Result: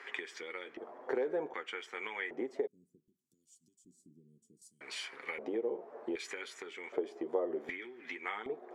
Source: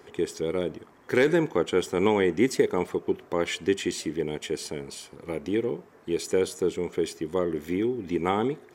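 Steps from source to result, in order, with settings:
flanger 0.77 Hz, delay 7.3 ms, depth 1.6 ms, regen −34%
downward compressor 10 to 1, threshold −39 dBFS, peak gain reduction 20.5 dB
high-pass filter 230 Hz 12 dB per octave
auto-filter band-pass square 0.65 Hz 630–2,000 Hz
0:02.67–0:04.81: inverse Chebyshev band-stop filter 700–2,100 Hz, stop band 80 dB
level +16 dB

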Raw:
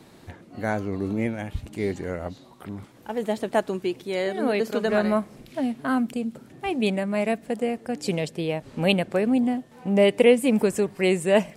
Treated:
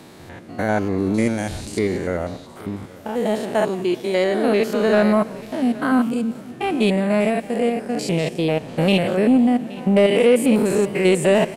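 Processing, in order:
spectrum averaged block by block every 100 ms
low-shelf EQ 120 Hz −6 dB
in parallel at −3.5 dB: soft clipping −22.5 dBFS, distortion −10 dB
0:01.14–0:01.79: on the sum: flat-topped bell 6,500 Hz +12.5 dB
single-tap delay 822 ms −20.5 dB
boost into a limiter +11 dB
feedback echo with a swinging delay time 176 ms, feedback 57%, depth 217 cents, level −21 dB
level −6 dB

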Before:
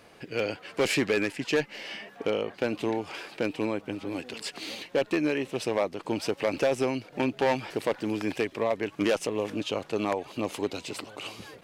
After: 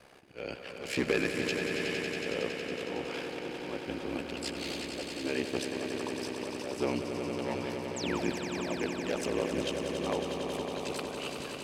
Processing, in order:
volume swells 269 ms
ring modulation 33 Hz
sound drawn into the spectrogram fall, 0:07.96–0:08.24, 480–8,500 Hz −40 dBFS
on a send: echo that builds up and dies away 92 ms, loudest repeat 5, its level −8.5 dB

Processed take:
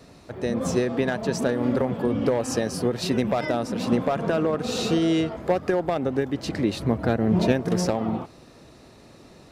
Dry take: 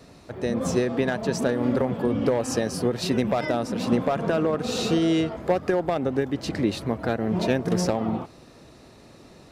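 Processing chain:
0:06.80–0:07.52: low-shelf EQ 330 Hz +6.5 dB

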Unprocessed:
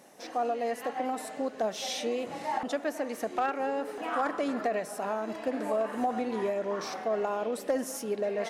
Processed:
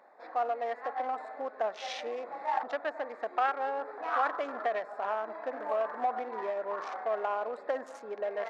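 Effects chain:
adaptive Wiener filter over 15 samples
high-pass filter 950 Hz 12 dB per octave
head-to-tape spacing loss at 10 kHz 28 dB
level +8.5 dB

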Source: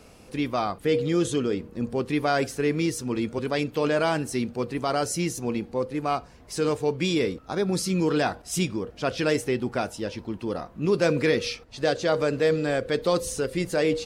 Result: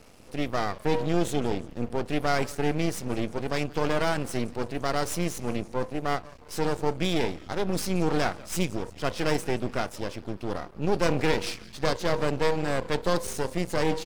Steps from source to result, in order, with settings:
echo with shifted repeats 173 ms, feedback 54%, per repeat −130 Hz, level −20 dB
half-wave rectification
level +1.5 dB

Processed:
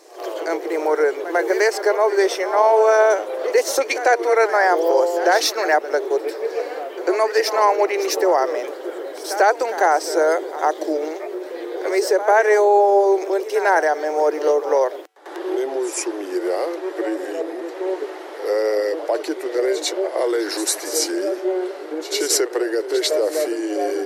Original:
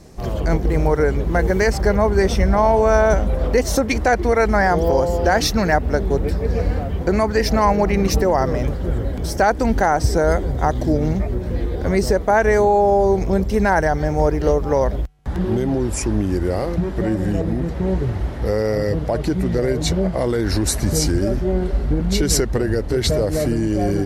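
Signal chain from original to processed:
Butterworth high-pass 330 Hz 72 dB per octave
backwards echo 96 ms −12.5 dB
level +1 dB

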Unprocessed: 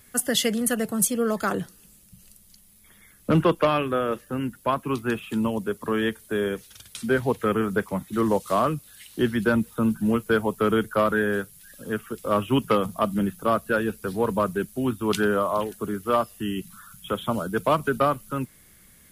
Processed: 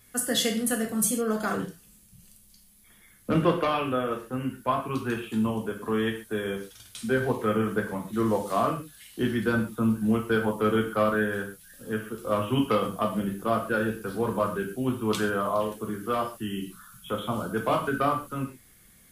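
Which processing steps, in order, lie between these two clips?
reverb whose tail is shaped and stops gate 160 ms falling, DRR 0.5 dB
level −5.5 dB

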